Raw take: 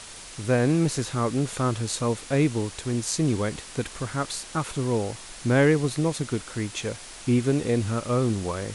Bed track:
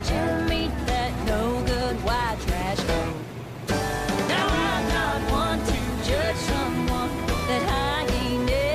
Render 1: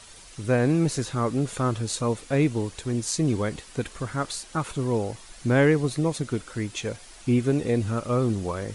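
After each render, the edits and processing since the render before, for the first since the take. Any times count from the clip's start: denoiser 8 dB, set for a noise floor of -42 dBFS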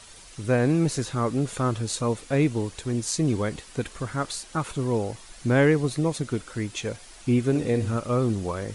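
7.49–7.97 flutter echo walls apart 10.5 m, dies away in 0.32 s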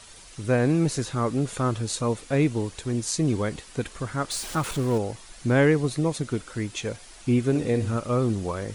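4.31–4.98 zero-crossing step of -32.5 dBFS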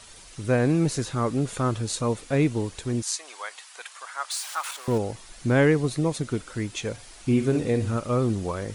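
3.02–4.88 HPF 800 Hz 24 dB/oct; 6.93–7.6 flutter echo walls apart 7.9 m, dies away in 0.27 s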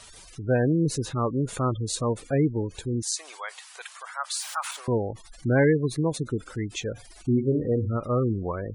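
spectral gate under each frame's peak -20 dB strong; bell 220 Hz -2 dB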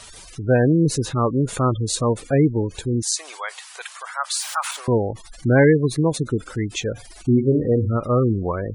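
gain +6 dB

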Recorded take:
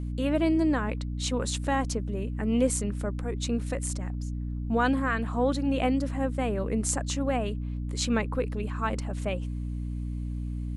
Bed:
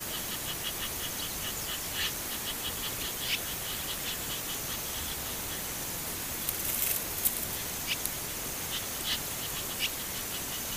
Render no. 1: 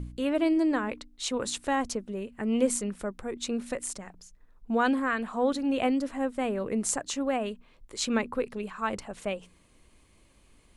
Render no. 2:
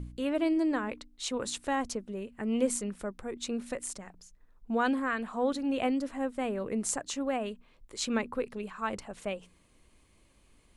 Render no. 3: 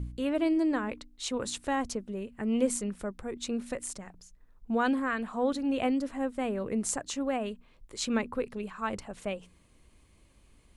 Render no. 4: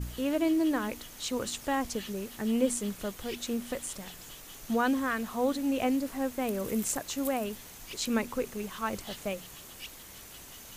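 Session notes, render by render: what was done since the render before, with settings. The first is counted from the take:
de-hum 60 Hz, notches 5
gain -3 dB
bell 65 Hz +5 dB 2.9 oct
add bed -12.5 dB

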